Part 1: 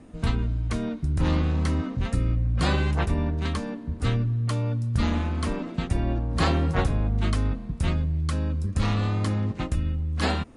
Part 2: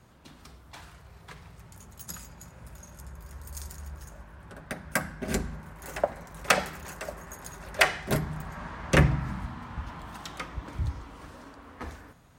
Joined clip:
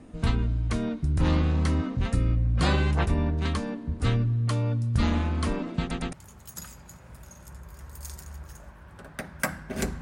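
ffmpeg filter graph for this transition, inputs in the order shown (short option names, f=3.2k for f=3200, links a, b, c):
-filter_complex "[0:a]apad=whole_dur=10.01,atrim=end=10.01,asplit=3[a][b][c];[a]atrim=end=5.912[d];[b]atrim=start=5.798:end=5.912[e];[c]atrim=start=5.798:end=5.912[f];[1:a]atrim=start=1.648:end=5.53[g];[d][e]acrossfade=d=0.004:c1=hsin:c2=hsin[h];[h][f]acrossfade=d=0.004:c1=hsin:c2=hsin[i];[i][g]acrossfade=d=0.004:c1=hsin:c2=hsin"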